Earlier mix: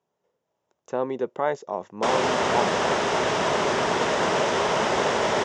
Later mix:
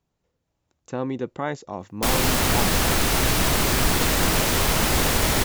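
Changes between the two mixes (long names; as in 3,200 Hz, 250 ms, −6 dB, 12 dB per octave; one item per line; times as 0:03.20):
background: remove high-frequency loss of the air 68 metres
master: remove loudspeaker in its box 230–6,700 Hz, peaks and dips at 290 Hz −7 dB, 410 Hz +6 dB, 610 Hz +6 dB, 940 Hz +5 dB, 2,400 Hz −4 dB, 4,300 Hz −9 dB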